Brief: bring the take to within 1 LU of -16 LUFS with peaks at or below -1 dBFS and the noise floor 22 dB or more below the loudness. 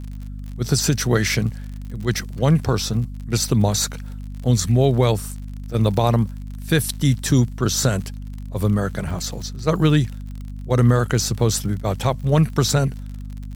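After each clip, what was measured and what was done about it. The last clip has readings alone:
ticks 47/s; hum 50 Hz; harmonics up to 250 Hz; hum level -29 dBFS; loudness -20.5 LUFS; peak -4.5 dBFS; loudness target -16.0 LUFS
-> de-click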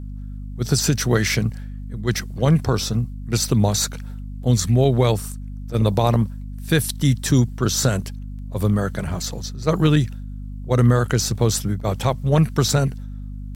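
ticks 0.44/s; hum 50 Hz; harmonics up to 250 Hz; hum level -29 dBFS
-> de-hum 50 Hz, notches 5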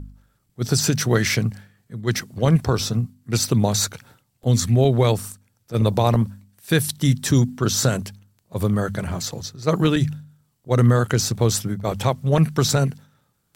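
hum none; loudness -21.0 LUFS; peak -5.0 dBFS; loudness target -16.0 LUFS
-> gain +5 dB; limiter -1 dBFS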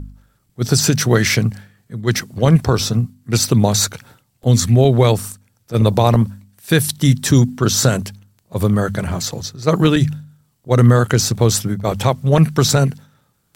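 loudness -16.0 LUFS; peak -1.0 dBFS; noise floor -63 dBFS

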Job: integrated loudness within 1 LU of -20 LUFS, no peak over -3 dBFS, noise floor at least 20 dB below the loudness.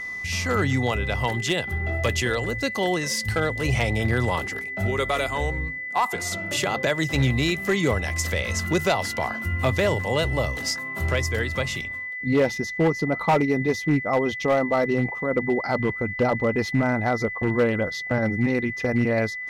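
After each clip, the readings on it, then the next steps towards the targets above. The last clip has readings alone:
clipped 0.8%; flat tops at -14.0 dBFS; steady tone 2000 Hz; tone level -30 dBFS; loudness -24.0 LUFS; peak -14.0 dBFS; loudness target -20.0 LUFS
-> clip repair -14 dBFS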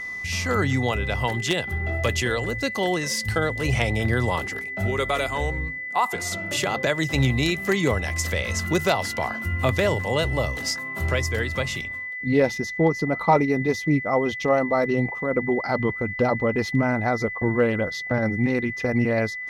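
clipped 0.0%; steady tone 2000 Hz; tone level -30 dBFS
-> notch 2000 Hz, Q 30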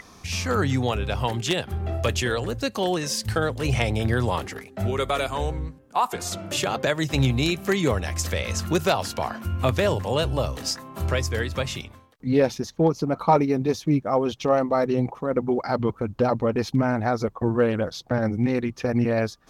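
steady tone none; loudness -24.5 LUFS; peak -5.5 dBFS; loudness target -20.0 LUFS
-> gain +4.5 dB; limiter -3 dBFS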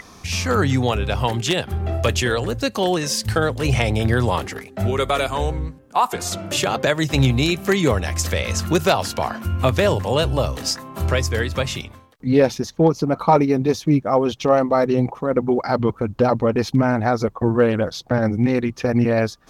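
loudness -20.0 LUFS; peak -3.0 dBFS; noise floor -46 dBFS

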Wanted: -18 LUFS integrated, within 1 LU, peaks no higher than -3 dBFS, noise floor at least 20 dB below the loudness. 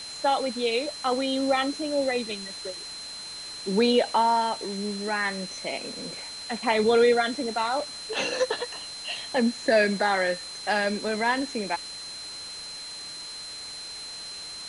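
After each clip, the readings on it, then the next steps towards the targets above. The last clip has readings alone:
steady tone 4100 Hz; tone level -37 dBFS; noise floor -39 dBFS; noise floor target -47 dBFS; loudness -27.0 LUFS; peak -10.0 dBFS; loudness target -18.0 LUFS
-> notch 4100 Hz, Q 30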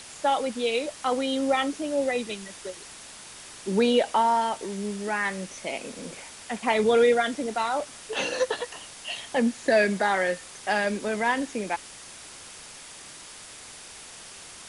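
steady tone none; noise floor -45 dBFS; noise floor target -46 dBFS
-> noise print and reduce 6 dB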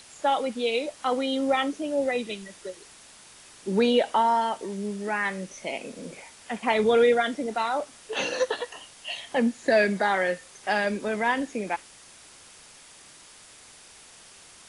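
noise floor -51 dBFS; loudness -26.0 LUFS; peak -10.0 dBFS; loudness target -18.0 LUFS
-> gain +8 dB; limiter -3 dBFS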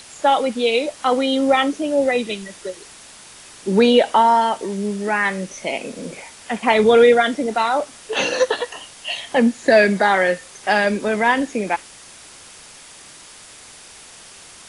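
loudness -18.0 LUFS; peak -3.0 dBFS; noise floor -43 dBFS

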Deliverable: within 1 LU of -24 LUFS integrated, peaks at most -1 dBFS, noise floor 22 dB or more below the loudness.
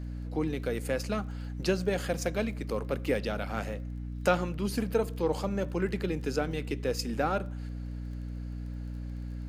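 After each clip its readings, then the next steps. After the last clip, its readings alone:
ticks 19/s; hum 60 Hz; harmonics up to 300 Hz; hum level -35 dBFS; loudness -32.5 LUFS; peak -12.0 dBFS; loudness target -24.0 LUFS
-> de-click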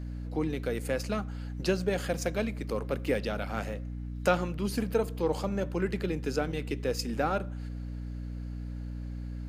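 ticks 0.11/s; hum 60 Hz; harmonics up to 300 Hz; hum level -35 dBFS
-> notches 60/120/180/240/300 Hz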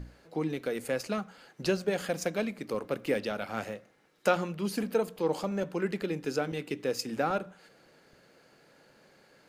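hum none; loudness -32.5 LUFS; peak -12.5 dBFS; loudness target -24.0 LUFS
-> gain +8.5 dB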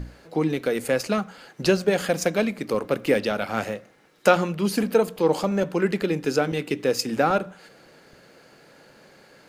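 loudness -24.0 LUFS; peak -4.0 dBFS; noise floor -53 dBFS

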